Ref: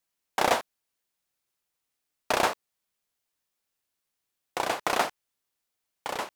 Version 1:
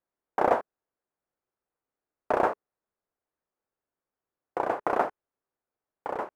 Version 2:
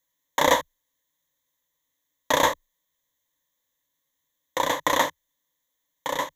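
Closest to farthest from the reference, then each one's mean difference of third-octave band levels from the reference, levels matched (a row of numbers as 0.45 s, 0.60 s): 2, 1; 4.0 dB, 9.5 dB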